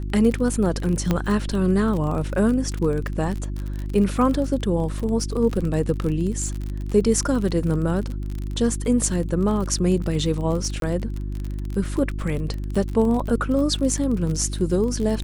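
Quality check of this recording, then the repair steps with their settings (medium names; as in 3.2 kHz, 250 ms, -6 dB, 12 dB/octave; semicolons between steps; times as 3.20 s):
crackle 39 per s -27 dBFS
hum 50 Hz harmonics 7 -28 dBFS
1.11 s: pop -8 dBFS
10.80–10.82 s: dropout 22 ms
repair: de-click; de-hum 50 Hz, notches 7; interpolate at 10.80 s, 22 ms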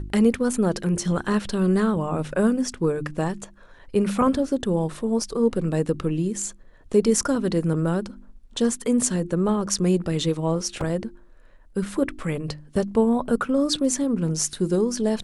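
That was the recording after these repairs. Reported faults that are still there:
nothing left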